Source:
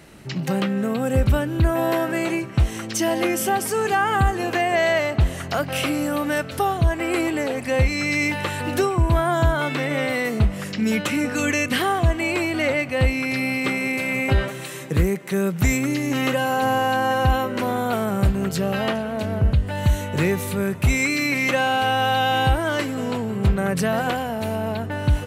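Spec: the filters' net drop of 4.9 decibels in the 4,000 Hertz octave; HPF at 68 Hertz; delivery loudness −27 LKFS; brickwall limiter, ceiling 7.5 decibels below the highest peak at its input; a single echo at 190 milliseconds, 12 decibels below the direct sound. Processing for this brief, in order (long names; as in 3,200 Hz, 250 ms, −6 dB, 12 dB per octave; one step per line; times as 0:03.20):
high-pass filter 68 Hz
parametric band 4,000 Hz −7.5 dB
brickwall limiter −14.5 dBFS
single-tap delay 190 ms −12 dB
level −2.5 dB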